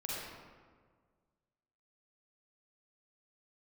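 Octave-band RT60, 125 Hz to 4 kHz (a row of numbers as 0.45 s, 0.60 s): 2.0 s, 1.9 s, 1.8 s, 1.6 s, 1.3 s, 0.90 s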